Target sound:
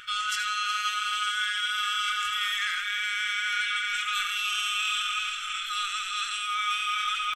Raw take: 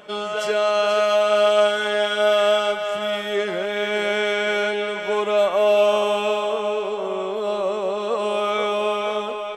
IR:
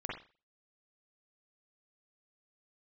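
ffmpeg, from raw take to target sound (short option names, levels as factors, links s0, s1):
-filter_complex "[0:a]atempo=1.3,afftfilt=real='re*(1-between(b*sr/4096,120,1200))':imag='im*(1-between(b*sr/4096,120,1200))':win_size=4096:overlap=0.75,areverse,acompressor=threshold=0.02:ratio=12,areverse,bandreject=f=47.16:t=h:w=4,bandreject=f=94.32:t=h:w=4,bandreject=f=141.48:t=h:w=4,asplit=2[s0][s1];[s1]aecho=0:1:80|160|240:0.335|0.104|0.0322[s2];[s0][s2]amix=inputs=2:normalize=0,adynamicequalizer=threshold=0.00316:dfrequency=4200:dqfactor=0.7:tfrequency=4200:tqfactor=0.7:attack=5:release=100:ratio=0.375:range=2.5:mode=boostabove:tftype=highshelf,volume=2.51"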